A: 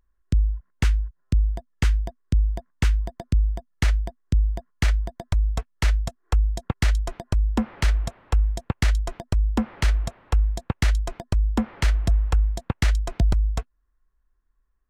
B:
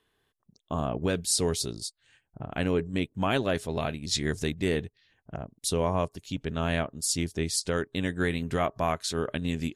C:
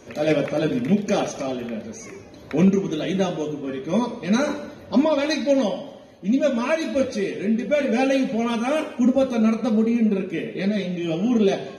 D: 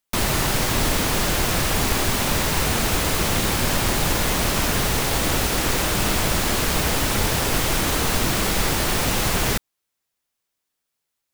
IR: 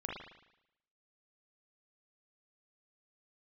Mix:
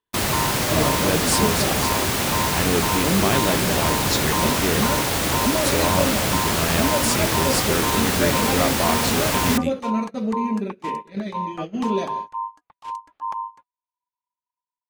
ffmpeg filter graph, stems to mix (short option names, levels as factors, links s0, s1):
-filter_complex "[0:a]alimiter=limit=0.178:level=0:latency=1:release=26,aeval=exprs='val(0)*sin(2*PI*980*n/s)':c=same,volume=0.562[s0];[1:a]volume=1.41[s1];[2:a]adelay=500,volume=0.562[s2];[3:a]highpass=68,volume=1[s3];[s0][s1][s2][s3]amix=inputs=4:normalize=0,agate=range=0.126:threshold=0.0447:ratio=16:detection=peak"